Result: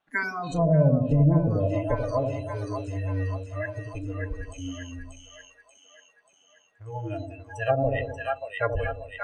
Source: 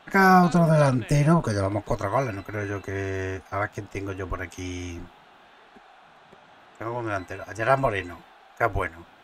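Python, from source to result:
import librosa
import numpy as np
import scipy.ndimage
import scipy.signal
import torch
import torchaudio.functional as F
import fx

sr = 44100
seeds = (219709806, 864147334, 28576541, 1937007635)

y = fx.noise_reduce_blind(x, sr, reduce_db=26)
y = fx.echo_split(y, sr, split_hz=690.0, low_ms=83, high_ms=585, feedback_pct=52, wet_db=-4.0)
y = fx.env_lowpass_down(y, sr, base_hz=600.0, full_db=-16.5)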